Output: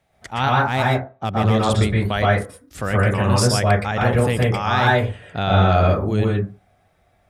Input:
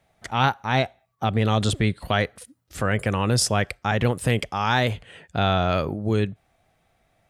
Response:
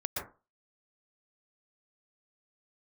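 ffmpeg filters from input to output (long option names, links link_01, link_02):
-filter_complex "[0:a]asplit=3[link_01][link_02][link_03];[link_01]afade=type=out:start_time=0.63:duration=0.02[link_04];[link_02]adynamicsmooth=sensitivity=6:basefreq=2800,afade=type=in:start_time=0.63:duration=0.02,afade=type=out:start_time=1.52:duration=0.02[link_05];[link_03]afade=type=in:start_time=1.52:duration=0.02[link_06];[link_04][link_05][link_06]amix=inputs=3:normalize=0[link_07];[1:a]atrim=start_sample=2205[link_08];[link_07][link_08]afir=irnorm=-1:irlink=0"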